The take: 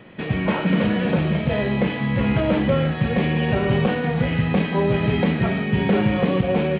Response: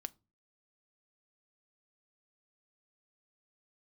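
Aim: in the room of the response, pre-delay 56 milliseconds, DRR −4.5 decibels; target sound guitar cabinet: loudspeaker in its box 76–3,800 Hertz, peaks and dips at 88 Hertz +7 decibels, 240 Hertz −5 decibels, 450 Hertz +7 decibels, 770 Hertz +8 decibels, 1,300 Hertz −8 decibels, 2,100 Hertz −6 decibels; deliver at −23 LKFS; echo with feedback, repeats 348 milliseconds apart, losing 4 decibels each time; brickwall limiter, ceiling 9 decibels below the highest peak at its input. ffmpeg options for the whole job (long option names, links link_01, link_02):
-filter_complex "[0:a]alimiter=limit=-16.5dB:level=0:latency=1,aecho=1:1:348|696|1044|1392|1740|2088|2436|2784|3132:0.631|0.398|0.25|0.158|0.0994|0.0626|0.0394|0.0249|0.0157,asplit=2[link_01][link_02];[1:a]atrim=start_sample=2205,adelay=56[link_03];[link_02][link_03]afir=irnorm=-1:irlink=0,volume=7.5dB[link_04];[link_01][link_04]amix=inputs=2:normalize=0,highpass=76,equalizer=frequency=88:width_type=q:width=4:gain=7,equalizer=frequency=240:width_type=q:width=4:gain=-5,equalizer=frequency=450:width_type=q:width=4:gain=7,equalizer=frequency=770:width_type=q:width=4:gain=8,equalizer=frequency=1300:width_type=q:width=4:gain=-8,equalizer=frequency=2100:width_type=q:width=4:gain=-6,lowpass=frequency=3800:width=0.5412,lowpass=frequency=3800:width=1.3066,volume=-6dB"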